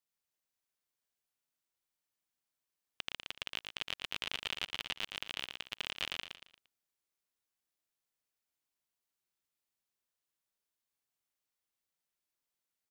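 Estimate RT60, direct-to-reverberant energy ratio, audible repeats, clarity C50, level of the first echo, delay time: no reverb, no reverb, 4, no reverb, -5.0 dB, 115 ms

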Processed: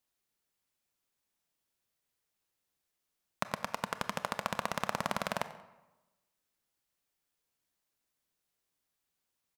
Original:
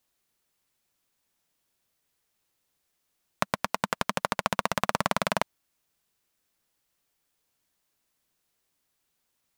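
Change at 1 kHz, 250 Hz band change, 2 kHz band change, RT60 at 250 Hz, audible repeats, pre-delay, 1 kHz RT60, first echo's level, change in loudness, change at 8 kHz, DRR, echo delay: -7.0 dB, -7.5 dB, -7.0 dB, 1.1 s, 2, 25 ms, 1.1 s, -19.5 dB, -7.0 dB, -7.5 dB, 11.5 dB, 92 ms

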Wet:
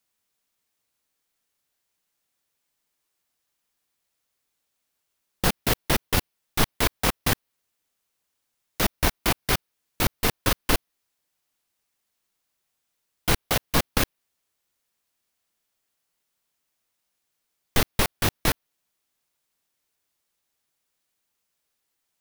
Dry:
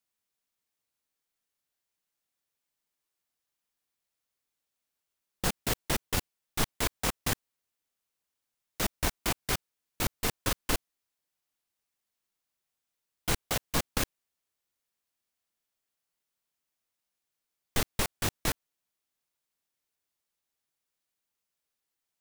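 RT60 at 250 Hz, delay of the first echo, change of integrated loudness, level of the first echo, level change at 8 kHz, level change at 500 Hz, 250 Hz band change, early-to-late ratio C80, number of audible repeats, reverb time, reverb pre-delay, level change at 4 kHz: no reverb, no echo, +7.0 dB, no echo, +4.0 dB, +7.5 dB, +7.5 dB, no reverb, no echo, no reverb, no reverb, +7.0 dB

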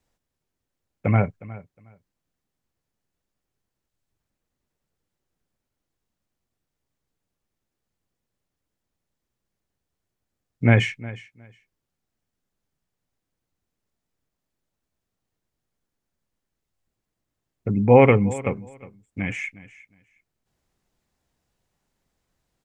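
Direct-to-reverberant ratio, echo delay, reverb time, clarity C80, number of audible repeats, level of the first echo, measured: no reverb, 361 ms, no reverb, no reverb, 2, -18.5 dB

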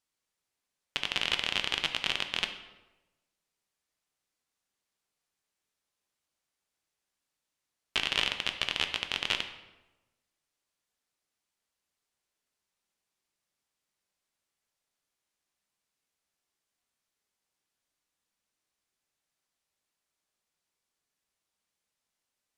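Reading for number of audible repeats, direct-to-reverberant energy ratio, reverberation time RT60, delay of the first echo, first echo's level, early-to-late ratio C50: no echo, 6.0 dB, 1.1 s, no echo, no echo, 9.5 dB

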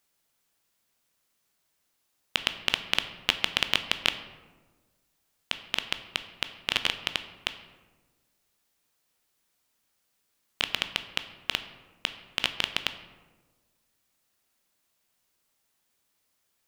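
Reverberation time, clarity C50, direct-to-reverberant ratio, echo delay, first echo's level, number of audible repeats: 1.4 s, 11.5 dB, 9.0 dB, no echo, no echo, no echo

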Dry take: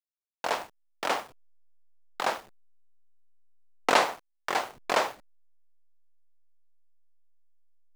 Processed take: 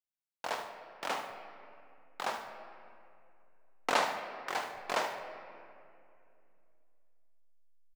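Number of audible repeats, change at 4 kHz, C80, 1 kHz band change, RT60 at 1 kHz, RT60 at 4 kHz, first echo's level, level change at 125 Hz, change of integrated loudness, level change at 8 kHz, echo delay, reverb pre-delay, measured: 2, -6.5 dB, 8.5 dB, -6.0 dB, 2.4 s, 1.5 s, -11.0 dB, -5.5 dB, -7.0 dB, -6.5 dB, 74 ms, 20 ms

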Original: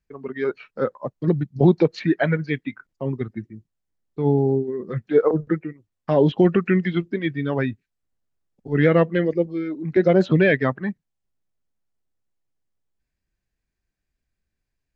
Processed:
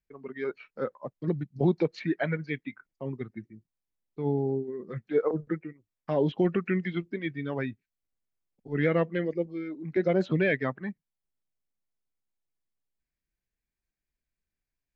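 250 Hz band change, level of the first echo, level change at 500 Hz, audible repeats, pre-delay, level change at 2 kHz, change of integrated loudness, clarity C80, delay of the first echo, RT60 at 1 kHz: -9.0 dB, no echo, -8.5 dB, no echo, no reverb, -7.5 dB, -8.5 dB, no reverb, no echo, no reverb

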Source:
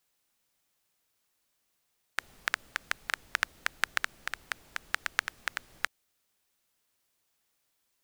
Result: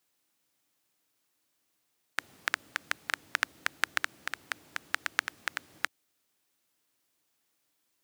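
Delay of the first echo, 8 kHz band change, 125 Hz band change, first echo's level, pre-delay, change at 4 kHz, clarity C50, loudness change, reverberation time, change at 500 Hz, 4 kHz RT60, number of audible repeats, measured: no echo, 0.0 dB, no reading, no echo, no reverb, 0.0 dB, no reverb, 0.0 dB, no reverb, +0.5 dB, no reverb, no echo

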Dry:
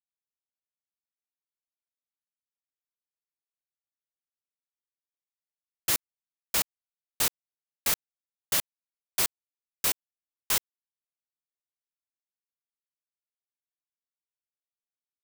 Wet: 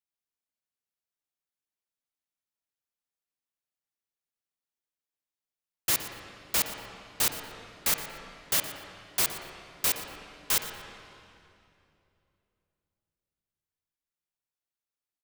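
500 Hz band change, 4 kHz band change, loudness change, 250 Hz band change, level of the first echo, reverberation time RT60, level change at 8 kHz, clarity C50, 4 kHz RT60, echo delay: +2.0 dB, +0.5 dB, 0.0 dB, +2.0 dB, -15.0 dB, 2.8 s, 0.0 dB, 5.0 dB, 2.3 s, 118 ms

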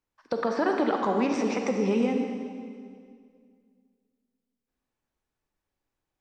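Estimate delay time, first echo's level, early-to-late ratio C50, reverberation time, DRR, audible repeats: no echo, no echo, 3.5 dB, 2.1 s, 3.0 dB, no echo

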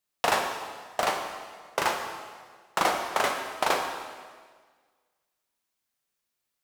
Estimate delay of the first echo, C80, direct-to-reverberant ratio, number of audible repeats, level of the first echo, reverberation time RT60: no echo, 6.0 dB, 2.5 dB, no echo, no echo, 1.6 s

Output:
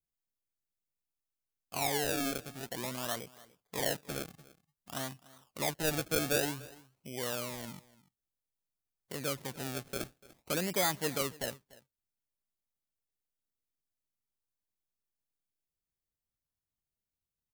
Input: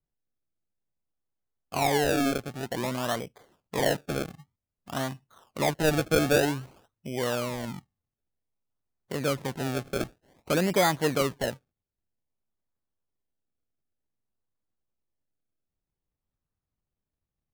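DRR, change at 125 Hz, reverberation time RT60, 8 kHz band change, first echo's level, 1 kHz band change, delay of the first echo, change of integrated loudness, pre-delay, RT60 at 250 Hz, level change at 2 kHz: no reverb, -10.0 dB, no reverb, -1.0 dB, -21.0 dB, -9.0 dB, 293 ms, -7.0 dB, no reverb, no reverb, -7.0 dB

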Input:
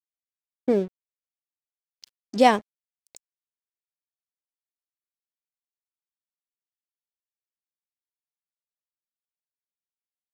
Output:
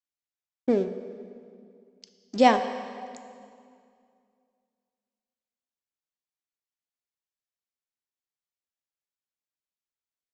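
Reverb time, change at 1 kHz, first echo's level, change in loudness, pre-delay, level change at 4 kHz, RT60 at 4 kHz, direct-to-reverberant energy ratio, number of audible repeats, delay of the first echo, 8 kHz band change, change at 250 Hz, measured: 2.3 s, -1.0 dB, no echo, -2.5 dB, 3 ms, -1.5 dB, 1.9 s, 8.5 dB, no echo, no echo, -3.0 dB, -0.5 dB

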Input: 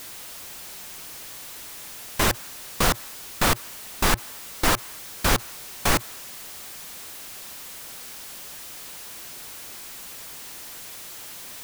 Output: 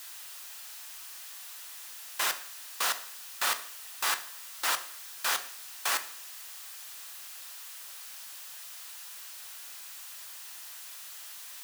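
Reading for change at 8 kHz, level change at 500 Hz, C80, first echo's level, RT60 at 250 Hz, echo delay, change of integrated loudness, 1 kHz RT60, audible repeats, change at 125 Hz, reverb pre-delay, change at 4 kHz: -5.0 dB, -16.0 dB, 17.5 dB, no echo, 0.55 s, no echo, -6.5 dB, 0.50 s, no echo, under -40 dB, 16 ms, -5.0 dB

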